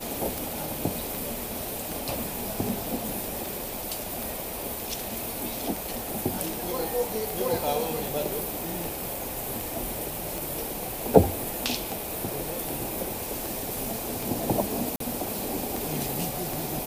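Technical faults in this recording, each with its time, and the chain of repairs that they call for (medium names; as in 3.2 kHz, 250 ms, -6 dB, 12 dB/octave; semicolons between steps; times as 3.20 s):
tick 78 rpm
14.96–15.00 s: dropout 43 ms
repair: de-click; interpolate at 14.96 s, 43 ms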